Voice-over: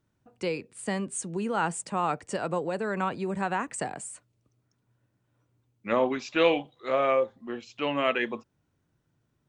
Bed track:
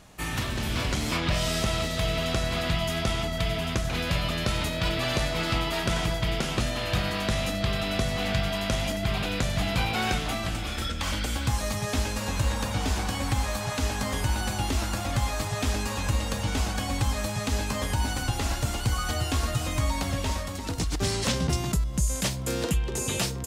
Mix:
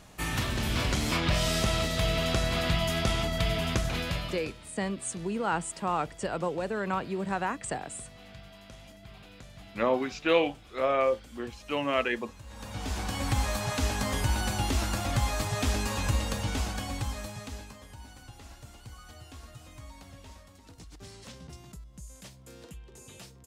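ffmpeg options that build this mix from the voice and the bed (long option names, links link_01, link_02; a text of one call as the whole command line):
ffmpeg -i stem1.wav -i stem2.wav -filter_complex "[0:a]adelay=3900,volume=-1.5dB[link_01];[1:a]volume=20.5dB,afade=type=out:start_time=3.78:duration=0.76:silence=0.0841395,afade=type=in:start_time=12.47:duration=0.9:silence=0.0891251,afade=type=out:start_time=16.06:duration=1.73:silence=0.105925[link_02];[link_01][link_02]amix=inputs=2:normalize=0" out.wav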